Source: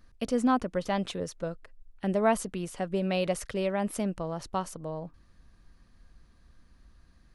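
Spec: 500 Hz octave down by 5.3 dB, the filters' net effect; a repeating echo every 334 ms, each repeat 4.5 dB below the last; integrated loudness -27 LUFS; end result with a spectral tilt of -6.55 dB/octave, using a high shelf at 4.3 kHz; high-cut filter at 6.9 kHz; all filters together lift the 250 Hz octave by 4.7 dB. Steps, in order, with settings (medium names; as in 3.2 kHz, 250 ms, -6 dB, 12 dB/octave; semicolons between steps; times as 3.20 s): low-pass 6.9 kHz; peaking EQ 250 Hz +7.5 dB; peaking EQ 500 Hz -9 dB; treble shelf 4.3 kHz -5 dB; feedback delay 334 ms, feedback 60%, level -4.5 dB; trim +0.5 dB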